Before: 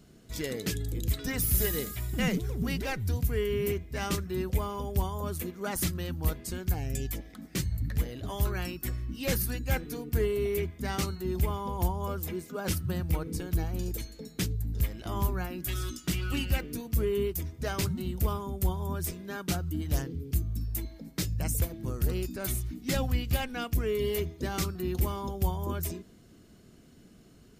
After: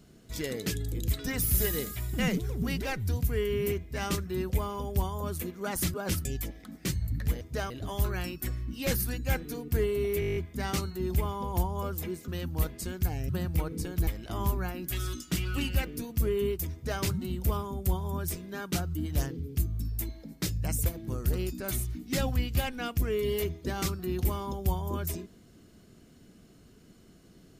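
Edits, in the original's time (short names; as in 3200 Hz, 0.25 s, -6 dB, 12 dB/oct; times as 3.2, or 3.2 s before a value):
5.94–6.95 swap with 12.53–12.84
10.61 stutter 0.02 s, 9 plays
13.62–14.83 cut
17.49–17.78 copy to 8.11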